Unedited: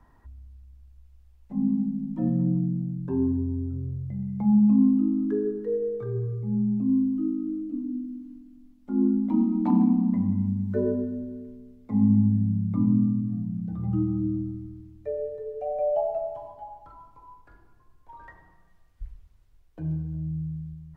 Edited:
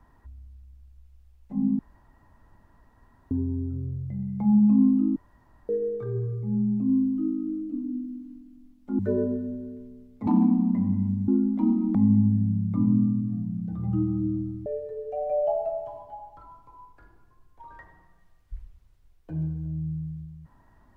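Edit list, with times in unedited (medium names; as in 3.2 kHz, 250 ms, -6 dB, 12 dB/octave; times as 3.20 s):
1.79–3.31 s: room tone
5.16–5.69 s: room tone
8.99–9.66 s: swap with 10.67–11.95 s
14.66–15.15 s: delete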